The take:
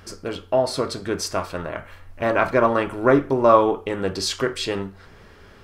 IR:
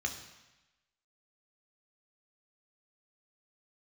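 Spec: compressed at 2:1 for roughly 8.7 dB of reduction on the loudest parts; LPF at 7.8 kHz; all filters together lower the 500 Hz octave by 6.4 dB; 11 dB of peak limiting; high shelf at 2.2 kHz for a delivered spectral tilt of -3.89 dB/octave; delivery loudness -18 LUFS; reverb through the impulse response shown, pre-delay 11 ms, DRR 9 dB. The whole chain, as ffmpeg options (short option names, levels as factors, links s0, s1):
-filter_complex "[0:a]lowpass=7800,equalizer=f=500:t=o:g=-8.5,highshelf=f=2200:g=3.5,acompressor=threshold=0.0355:ratio=2,alimiter=limit=0.0708:level=0:latency=1,asplit=2[s0][s1];[1:a]atrim=start_sample=2205,adelay=11[s2];[s1][s2]afir=irnorm=-1:irlink=0,volume=0.237[s3];[s0][s3]amix=inputs=2:normalize=0,volume=5.96"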